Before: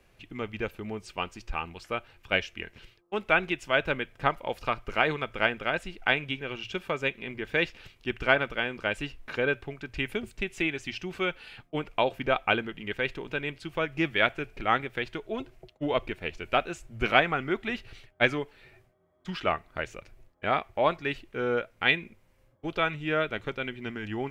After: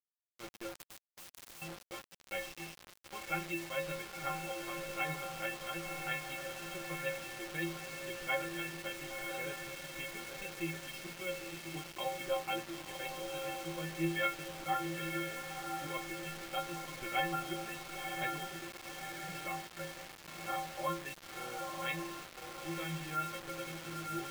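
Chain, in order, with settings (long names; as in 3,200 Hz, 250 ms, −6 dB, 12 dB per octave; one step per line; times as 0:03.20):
stiff-string resonator 160 Hz, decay 0.55 s, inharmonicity 0.03
feedback delay with all-pass diffusion 989 ms, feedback 51%, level −4.5 dB
bit reduction 8 bits
0:00.75–0:01.62: every bin compressed towards the loudest bin 4 to 1
level +2.5 dB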